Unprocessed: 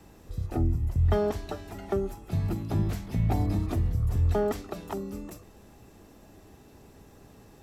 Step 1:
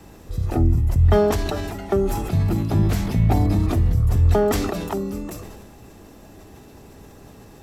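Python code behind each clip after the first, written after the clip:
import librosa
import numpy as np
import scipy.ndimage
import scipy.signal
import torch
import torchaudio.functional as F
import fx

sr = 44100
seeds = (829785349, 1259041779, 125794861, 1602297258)

y = fx.sustainer(x, sr, db_per_s=31.0)
y = y * librosa.db_to_amplitude(7.5)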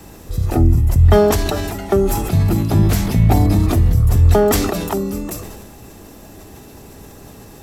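y = fx.high_shelf(x, sr, hz=6500.0, db=8.0)
y = y * librosa.db_to_amplitude(5.0)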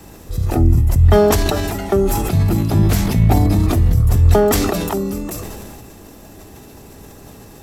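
y = fx.sustainer(x, sr, db_per_s=23.0)
y = y * librosa.db_to_amplitude(-1.0)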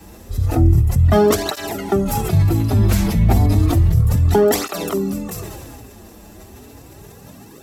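y = fx.flanger_cancel(x, sr, hz=0.32, depth_ms=7.9)
y = y * librosa.db_to_amplitude(1.5)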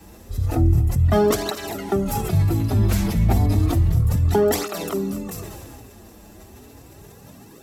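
y = x + 10.0 ** (-17.0 / 20.0) * np.pad(x, (int(237 * sr / 1000.0), 0))[:len(x)]
y = y * librosa.db_to_amplitude(-4.0)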